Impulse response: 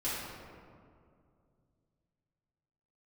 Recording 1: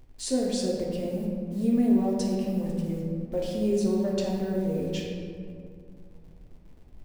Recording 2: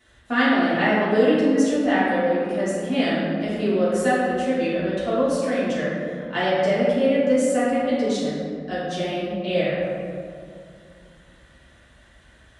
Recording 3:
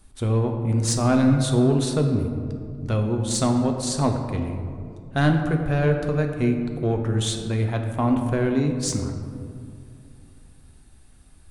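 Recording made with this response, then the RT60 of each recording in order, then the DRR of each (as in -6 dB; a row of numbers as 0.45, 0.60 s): 2; 2.3, 2.3, 2.4 s; -3.5, -11.5, 3.5 dB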